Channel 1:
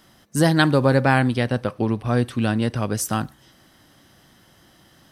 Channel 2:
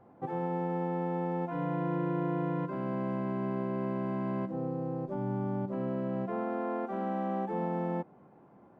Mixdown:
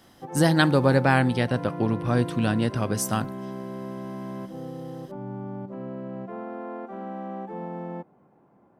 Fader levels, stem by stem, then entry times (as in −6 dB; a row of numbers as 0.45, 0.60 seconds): −2.5, −2.0 decibels; 0.00, 0.00 seconds